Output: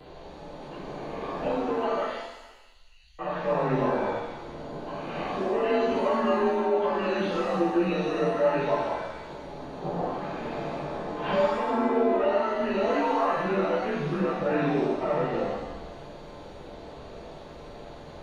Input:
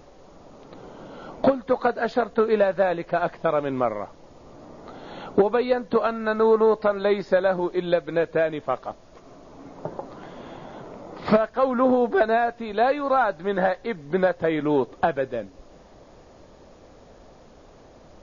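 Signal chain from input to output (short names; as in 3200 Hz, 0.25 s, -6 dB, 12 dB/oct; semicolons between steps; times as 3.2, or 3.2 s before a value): inharmonic rescaling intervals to 88%; dynamic EQ 2500 Hz, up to +4 dB, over -41 dBFS, Q 1; compressor, threshold -25 dBFS, peak gain reduction 11 dB; limiter -26.5 dBFS, peak gain reduction 10.5 dB; 2.02–3.19 inverse Chebyshev band-stop 210–1100 Hz, stop band 70 dB; shimmer reverb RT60 1 s, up +7 st, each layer -8 dB, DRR -8.5 dB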